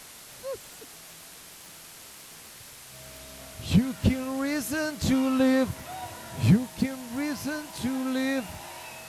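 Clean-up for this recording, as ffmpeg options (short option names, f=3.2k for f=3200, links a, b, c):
-af "adeclick=t=4,bandreject=f=640:w=30,afwtdn=0.0056"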